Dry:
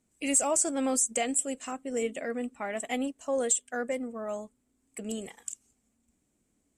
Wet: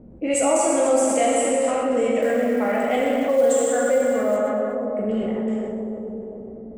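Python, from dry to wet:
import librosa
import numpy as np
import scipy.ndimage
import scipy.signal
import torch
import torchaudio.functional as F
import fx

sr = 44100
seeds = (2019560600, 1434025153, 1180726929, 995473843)

y = fx.peak_eq(x, sr, hz=540.0, db=6.0, octaves=0.32)
y = fx.rev_plate(y, sr, seeds[0], rt60_s=3.1, hf_ratio=0.75, predelay_ms=0, drr_db=-4.5)
y = fx.env_lowpass(y, sr, base_hz=490.0, full_db=-19.5)
y = fx.high_shelf(y, sr, hz=3700.0, db=-11.0)
y = fx.quant_float(y, sr, bits=4, at=(2.22, 4.37))
y = fx.echo_thinned(y, sr, ms=124, feedback_pct=37, hz=420.0, wet_db=-13)
y = fx.env_flatten(y, sr, amount_pct=50)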